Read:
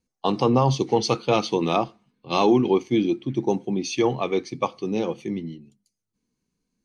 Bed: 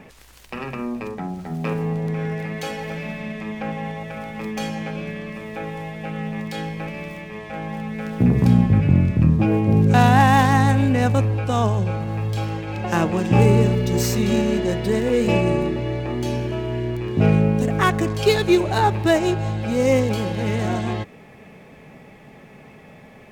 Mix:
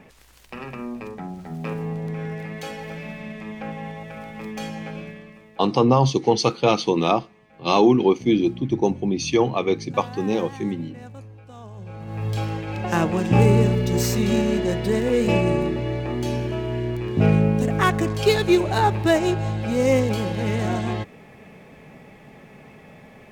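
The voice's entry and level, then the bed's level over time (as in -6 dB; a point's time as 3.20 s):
5.35 s, +2.5 dB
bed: 4.98 s -4.5 dB
5.73 s -22 dB
11.65 s -22 dB
12.28 s -1 dB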